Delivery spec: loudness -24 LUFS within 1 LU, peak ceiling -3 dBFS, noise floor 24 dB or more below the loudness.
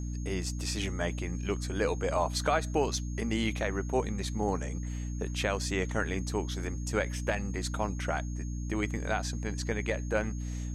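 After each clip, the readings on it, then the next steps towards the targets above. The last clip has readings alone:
hum 60 Hz; highest harmonic 300 Hz; hum level -33 dBFS; steady tone 6.5 kHz; tone level -51 dBFS; loudness -32.5 LUFS; peak level -15.0 dBFS; loudness target -24.0 LUFS
-> de-hum 60 Hz, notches 5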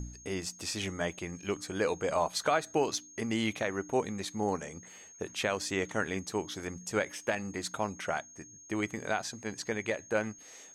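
hum not found; steady tone 6.5 kHz; tone level -51 dBFS
-> band-stop 6.5 kHz, Q 30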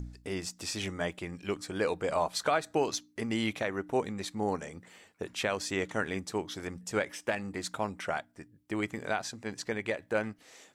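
steady tone not found; loudness -34.0 LUFS; peak level -16.5 dBFS; loudness target -24.0 LUFS
-> trim +10 dB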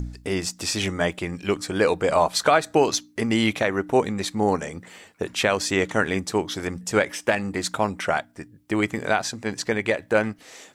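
loudness -24.0 LUFS; peak level -6.5 dBFS; noise floor -54 dBFS

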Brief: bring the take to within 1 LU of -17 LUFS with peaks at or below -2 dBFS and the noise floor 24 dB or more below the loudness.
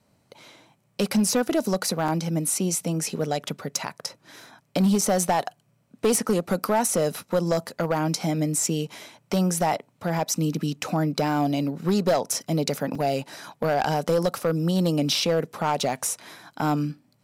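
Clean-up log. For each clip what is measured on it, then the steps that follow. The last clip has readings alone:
clipped samples 1.2%; clipping level -15.5 dBFS; dropouts 3; longest dropout 3.6 ms; loudness -25.0 LUFS; peak level -15.5 dBFS; loudness target -17.0 LUFS
-> clip repair -15.5 dBFS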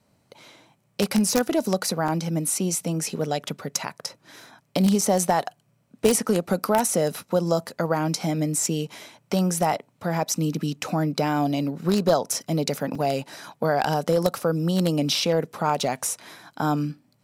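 clipped samples 0.0%; dropouts 3; longest dropout 3.6 ms
-> interpolate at 2.08/5.01/12.95 s, 3.6 ms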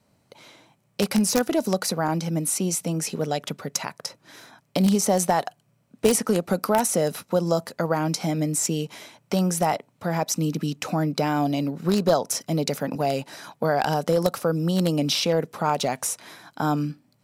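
dropouts 0; loudness -24.5 LUFS; peak level -6.5 dBFS; loudness target -17.0 LUFS
-> trim +7.5 dB; peak limiter -2 dBFS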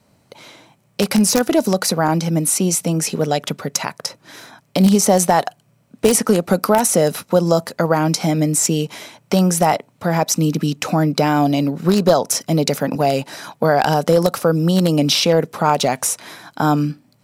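loudness -17.0 LUFS; peak level -2.0 dBFS; noise floor -58 dBFS

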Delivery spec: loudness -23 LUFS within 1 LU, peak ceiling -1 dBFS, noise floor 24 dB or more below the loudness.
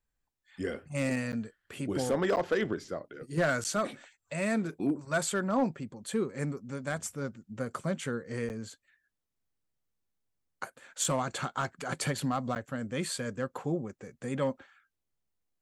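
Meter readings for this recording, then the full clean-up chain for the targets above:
clipped samples 0.3%; clipping level -21.0 dBFS; dropouts 5; longest dropout 9.4 ms; loudness -33.0 LUFS; peak level -21.0 dBFS; loudness target -23.0 LUFS
-> clip repair -21 dBFS; interpolate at 1.32/2.36/3.64/8.49/12.55 s, 9.4 ms; trim +10 dB

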